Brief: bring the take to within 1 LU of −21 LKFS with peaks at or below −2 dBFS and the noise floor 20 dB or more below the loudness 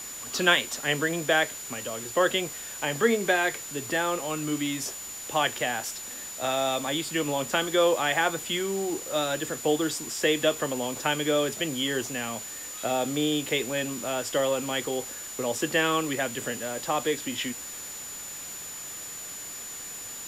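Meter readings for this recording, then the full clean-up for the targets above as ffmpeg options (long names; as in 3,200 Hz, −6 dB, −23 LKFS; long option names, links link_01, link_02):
interfering tone 7,000 Hz; level of the tone −38 dBFS; background noise floor −39 dBFS; target noise floor −48 dBFS; integrated loudness −27.5 LKFS; sample peak −6.5 dBFS; target loudness −21.0 LKFS
→ -af "bandreject=frequency=7000:width=30"
-af "afftdn=noise_reduction=9:noise_floor=-39"
-af "volume=6.5dB,alimiter=limit=-2dB:level=0:latency=1"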